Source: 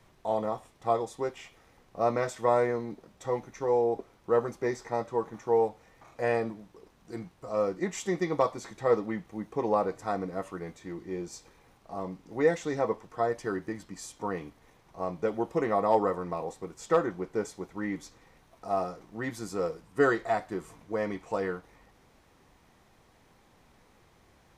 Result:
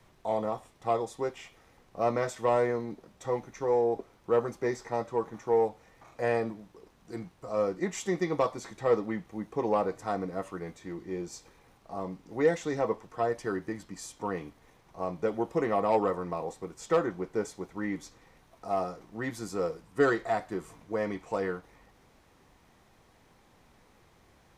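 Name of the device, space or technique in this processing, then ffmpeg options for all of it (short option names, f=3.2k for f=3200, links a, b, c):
one-band saturation: -filter_complex "[0:a]acrossover=split=520|3700[a][b][c];[b]asoftclip=type=tanh:threshold=-21.5dB[d];[a][d][c]amix=inputs=3:normalize=0"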